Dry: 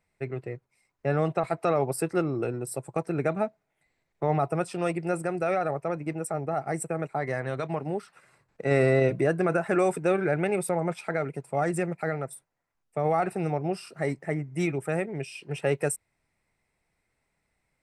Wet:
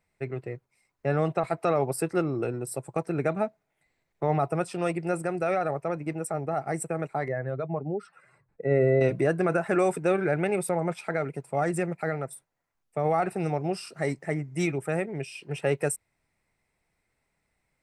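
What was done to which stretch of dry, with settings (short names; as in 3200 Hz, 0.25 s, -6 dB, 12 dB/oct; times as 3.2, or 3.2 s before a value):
7.28–9.01 spectral contrast raised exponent 1.6
13.4–14.74 bell 6100 Hz +5 dB 1.7 oct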